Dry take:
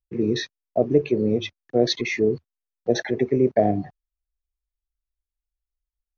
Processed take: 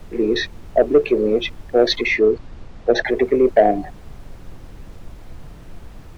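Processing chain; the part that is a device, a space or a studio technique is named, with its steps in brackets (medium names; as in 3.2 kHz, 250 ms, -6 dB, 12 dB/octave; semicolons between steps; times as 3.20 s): aircraft cabin announcement (band-pass 380–3600 Hz; saturation -12 dBFS, distortion -19 dB; brown noise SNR 15 dB); 2.07–3.05 s: low-pass 5.9 kHz 12 dB/octave; trim +9 dB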